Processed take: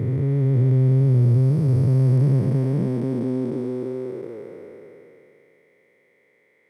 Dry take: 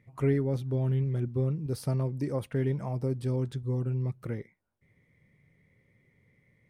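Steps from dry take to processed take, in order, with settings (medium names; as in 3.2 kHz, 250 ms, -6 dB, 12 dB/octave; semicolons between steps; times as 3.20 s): spectral blur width 1290 ms; high-pass sweep 100 Hz -> 450 Hz, 1.77–4.44 s; trim +9 dB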